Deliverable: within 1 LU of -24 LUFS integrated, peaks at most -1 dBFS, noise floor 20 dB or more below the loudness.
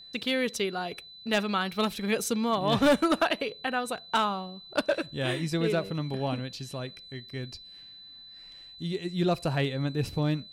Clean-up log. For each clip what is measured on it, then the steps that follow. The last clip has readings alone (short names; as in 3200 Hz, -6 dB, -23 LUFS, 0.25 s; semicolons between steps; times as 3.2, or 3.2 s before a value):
clipped 0.3%; flat tops at -17.0 dBFS; steady tone 4000 Hz; tone level -46 dBFS; loudness -29.0 LUFS; peak -17.0 dBFS; loudness target -24.0 LUFS
-> clip repair -17 dBFS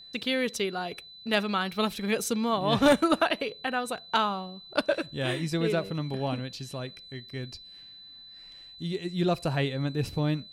clipped 0.0%; steady tone 4000 Hz; tone level -46 dBFS
-> notch 4000 Hz, Q 30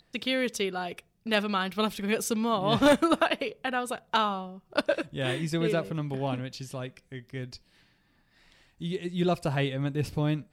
steady tone none; loudness -28.5 LUFS; peak -8.0 dBFS; loudness target -24.0 LUFS
-> gain +4.5 dB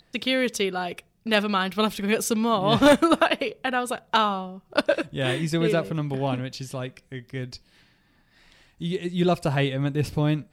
loudness -24.0 LUFS; peak -3.5 dBFS; noise floor -63 dBFS